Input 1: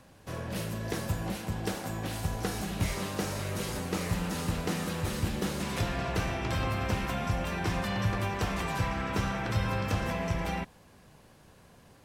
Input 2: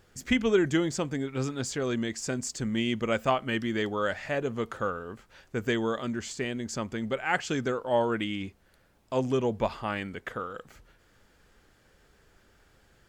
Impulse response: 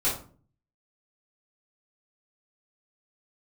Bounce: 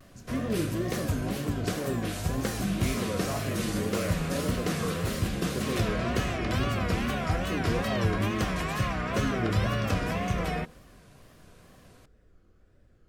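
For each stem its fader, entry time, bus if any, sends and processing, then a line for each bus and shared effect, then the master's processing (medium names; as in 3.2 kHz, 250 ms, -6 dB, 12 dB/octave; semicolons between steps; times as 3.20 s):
+2.0 dB, 0.00 s, no send, none
-8.0 dB, 0.00 s, send -16 dB, tilt shelf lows +8 dB, about 880 Hz; peak limiter -18.5 dBFS, peak gain reduction 11 dB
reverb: on, RT60 0.45 s, pre-delay 3 ms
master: wow and flutter 150 cents; Butterworth band-stop 870 Hz, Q 6.1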